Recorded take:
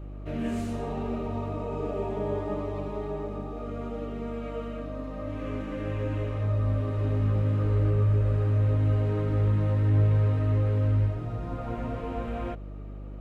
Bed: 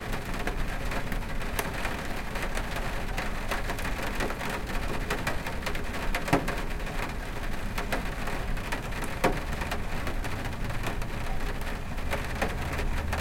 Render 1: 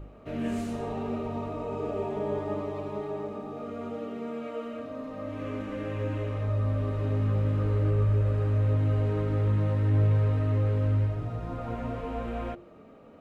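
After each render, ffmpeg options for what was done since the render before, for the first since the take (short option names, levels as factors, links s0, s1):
-af "bandreject=f=50:t=h:w=4,bandreject=f=100:t=h:w=4,bandreject=f=150:t=h:w=4,bandreject=f=200:t=h:w=4,bandreject=f=250:t=h:w=4,bandreject=f=300:t=h:w=4,bandreject=f=350:t=h:w=4"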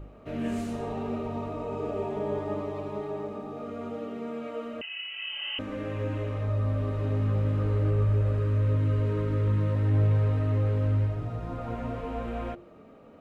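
-filter_complex "[0:a]asettb=1/sr,asplit=3[s0][s1][s2];[s0]atrim=end=4.814[s3];[s1]atrim=start=4.81:end=5.59,asetpts=PTS-STARTPTS,afade=t=in:d=0.004:c=qsin,afade=t=out:st=0.776:d=0.004:c=qsin,lowpass=f=2700:t=q:w=0.5098,lowpass=f=2700:t=q:w=0.6013,lowpass=f=2700:t=q:w=0.9,lowpass=f=2700:t=q:w=2.563,afreqshift=-3200[s4];[s2]atrim=start=5.586[s5];[s3][s4]acrossfade=d=0.004:c1=hsin:c2=qsin[s6];[s6][s5]acrossfade=d=0.004:c1=qsin:c2=hsin,asettb=1/sr,asplit=3[s7][s8][s9];[s7]atrim=end=8.384[s10];[s8]atrim=start=8.38:end=9.76,asetpts=PTS-STARTPTS,afade=t=in:d=0.004:c=qsin,afade=t=out:st=1.376:d=0.004:c=qsin,asuperstop=centerf=740:order=12:qfactor=2.9[s11];[s9]atrim=start=9.756[s12];[s10][s11]acrossfade=d=0.004:c1=hsin:c2=qsin[s13];[s13][s12]acrossfade=d=0.004:c1=qsin:c2=hsin"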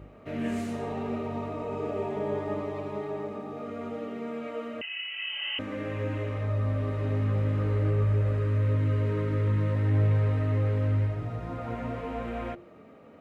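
-af "highpass=63,equalizer=f=2000:t=o:w=0.48:g=5.5"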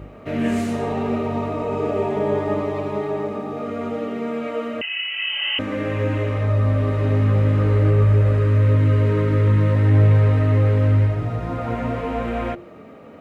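-af "volume=2.99"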